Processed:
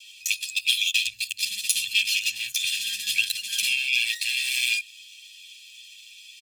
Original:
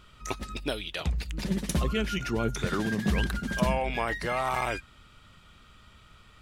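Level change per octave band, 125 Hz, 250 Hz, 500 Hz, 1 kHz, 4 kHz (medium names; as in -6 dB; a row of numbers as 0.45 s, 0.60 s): under -30 dB, under -35 dB, under -40 dB, under -35 dB, +15.5 dB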